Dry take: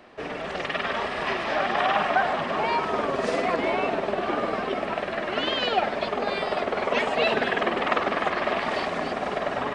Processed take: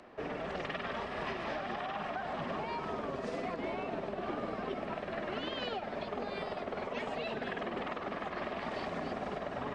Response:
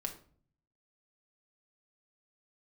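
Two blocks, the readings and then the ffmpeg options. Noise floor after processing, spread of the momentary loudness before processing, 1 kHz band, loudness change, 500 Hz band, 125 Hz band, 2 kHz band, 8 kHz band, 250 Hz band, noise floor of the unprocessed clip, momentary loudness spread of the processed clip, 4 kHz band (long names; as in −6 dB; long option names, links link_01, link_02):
−42 dBFS, 5 LU, −13.0 dB, −12.5 dB, −11.5 dB, −6.0 dB, −14.0 dB, can't be measured, −8.5 dB, −33 dBFS, 1 LU, −14.0 dB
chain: -filter_complex "[0:a]equalizer=frequency=4200:width=0.5:gain=-7,alimiter=limit=-18.5dB:level=0:latency=1:release=211,acrossover=split=230|3000[link_01][link_02][link_03];[link_02]acompressor=threshold=-33dB:ratio=6[link_04];[link_01][link_04][link_03]amix=inputs=3:normalize=0,lowpass=6500,acompressor=mode=upward:threshold=-56dB:ratio=2.5,volume=-3dB"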